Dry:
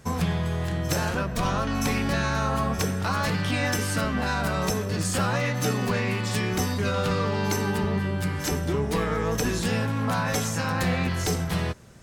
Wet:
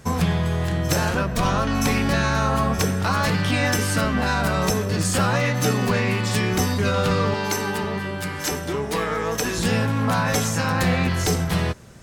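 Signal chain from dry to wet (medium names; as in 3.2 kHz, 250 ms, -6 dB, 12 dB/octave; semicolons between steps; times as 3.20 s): 7.34–9.58 s: bass shelf 250 Hz -11 dB; trim +4.5 dB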